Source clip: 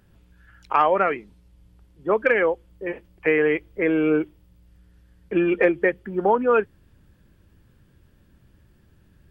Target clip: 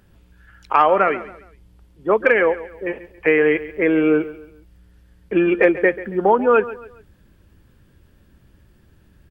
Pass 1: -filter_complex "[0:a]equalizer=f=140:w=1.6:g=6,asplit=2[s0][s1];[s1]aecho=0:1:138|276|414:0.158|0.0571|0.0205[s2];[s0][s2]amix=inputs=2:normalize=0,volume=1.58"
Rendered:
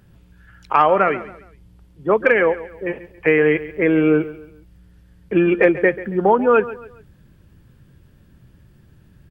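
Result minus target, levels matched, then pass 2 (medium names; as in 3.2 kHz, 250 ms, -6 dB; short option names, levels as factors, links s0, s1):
125 Hz band +6.0 dB
-filter_complex "[0:a]equalizer=f=140:w=1.6:g=-2.5,asplit=2[s0][s1];[s1]aecho=0:1:138|276|414:0.158|0.0571|0.0205[s2];[s0][s2]amix=inputs=2:normalize=0,volume=1.58"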